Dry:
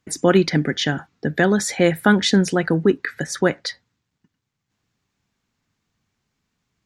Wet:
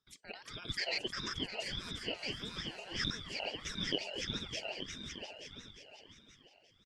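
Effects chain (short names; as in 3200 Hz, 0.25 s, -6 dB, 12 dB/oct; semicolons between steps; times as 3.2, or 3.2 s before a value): regenerating reverse delay 0.439 s, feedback 48%, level -1 dB; reverse; compressor 12:1, threshold -28 dBFS, peak gain reduction 21.5 dB; reverse; double band-pass 2400 Hz, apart 0.89 oct; feedback echo 0.353 s, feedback 48%, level -5 dB; ring modulator with a swept carrier 1500 Hz, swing 30%, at 1.6 Hz; gain +6 dB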